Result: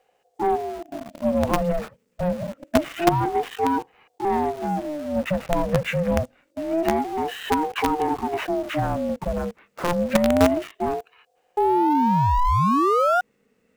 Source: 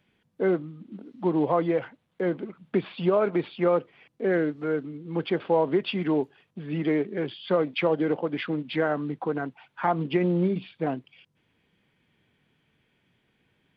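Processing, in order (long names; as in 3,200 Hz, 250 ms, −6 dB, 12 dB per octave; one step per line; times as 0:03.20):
bass and treble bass +11 dB, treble +14 dB
formants moved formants −6 semitones
sound drawn into the spectrogram rise, 0:11.57–0:13.21, 210–1,100 Hz −17 dBFS
in parallel at −7 dB: log-companded quantiser 2 bits
on the sum: ring modulator whose carrier an LFO sweeps 480 Hz, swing 30%, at 0.26 Hz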